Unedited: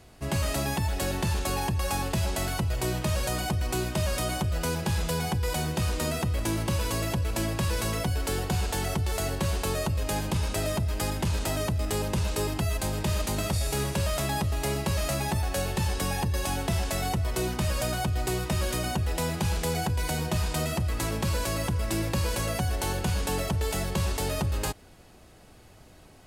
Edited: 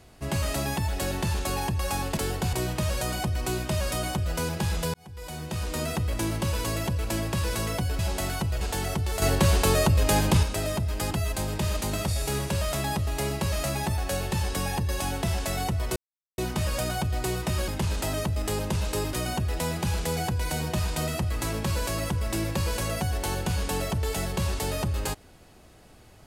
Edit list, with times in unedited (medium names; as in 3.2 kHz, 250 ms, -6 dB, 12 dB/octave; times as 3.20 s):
2.17–2.79 s: swap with 8.25–8.61 s
5.20–6.18 s: fade in
9.22–10.43 s: gain +7 dB
11.11–12.56 s: move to 18.71 s
17.41 s: insert silence 0.42 s